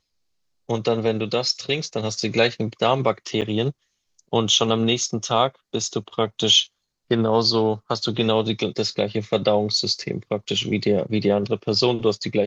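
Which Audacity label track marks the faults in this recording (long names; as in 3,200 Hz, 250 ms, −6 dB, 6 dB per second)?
3.410000	3.420000	drop-out 8.1 ms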